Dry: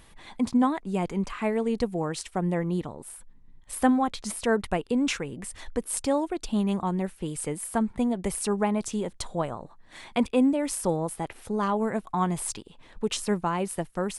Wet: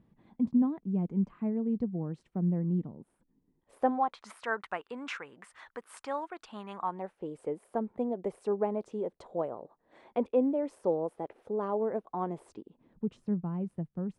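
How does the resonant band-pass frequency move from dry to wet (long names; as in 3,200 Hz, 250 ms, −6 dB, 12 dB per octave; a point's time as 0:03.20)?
resonant band-pass, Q 1.7
0:02.99 190 Hz
0:03.79 510 Hz
0:04.27 1,300 Hz
0:06.75 1,300 Hz
0:07.30 480 Hz
0:12.29 480 Hz
0:13.16 160 Hz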